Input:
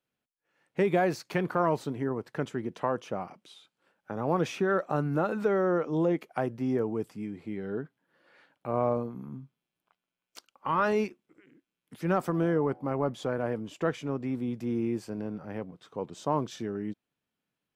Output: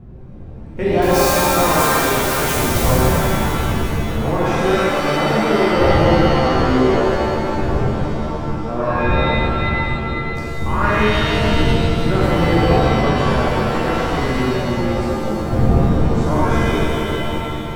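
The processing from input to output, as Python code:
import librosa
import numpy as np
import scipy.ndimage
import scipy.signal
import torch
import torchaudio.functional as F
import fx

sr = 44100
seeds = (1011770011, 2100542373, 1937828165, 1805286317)

y = fx.crossing_spikes(x, sr, level_db=-22.5, at=(1.02, 2.97))
y = fx.dmg_wind(y, sr, seeds[0], corner_hz=120.0, level_db=-31.0)
y = fx.rev_shimmer(y, sr, seeds[1], rt60_s=2.6, semitones=7, shimmer_db=-2, drr_db=-8.5)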